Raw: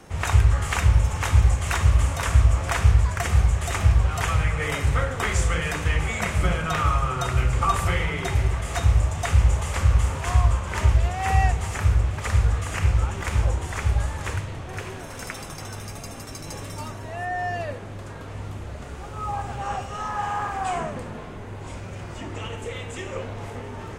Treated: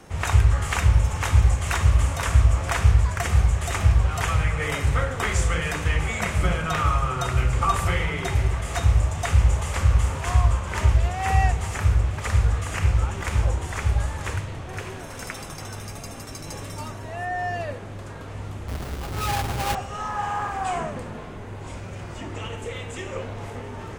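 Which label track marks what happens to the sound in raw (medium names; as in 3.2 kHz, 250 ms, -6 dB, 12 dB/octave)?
18.680000	19.750000	square wave that keeps the level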